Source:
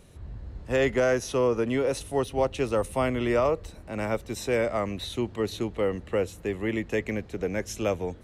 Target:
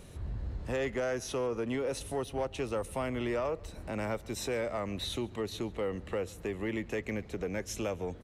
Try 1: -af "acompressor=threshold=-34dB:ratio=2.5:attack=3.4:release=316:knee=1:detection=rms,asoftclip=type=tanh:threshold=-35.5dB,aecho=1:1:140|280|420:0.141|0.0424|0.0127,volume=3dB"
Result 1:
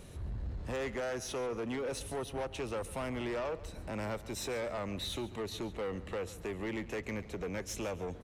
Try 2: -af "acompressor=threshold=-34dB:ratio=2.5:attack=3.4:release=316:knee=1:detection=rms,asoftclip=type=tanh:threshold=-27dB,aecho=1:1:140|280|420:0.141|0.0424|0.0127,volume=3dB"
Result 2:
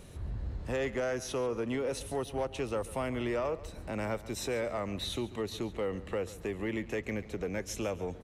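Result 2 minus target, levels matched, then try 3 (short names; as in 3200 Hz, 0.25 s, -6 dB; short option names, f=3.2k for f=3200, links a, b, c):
echo-to-direct +7 dB
-af "acompressor=threshold=-34dB:ratio=2.5:attack=3.4:release=316:knee=1:detection=rms,asoftclip=type=tanh:threshold=-27dB,aecho=1:1:140|280:0.0631|0.0189,volume=3dB"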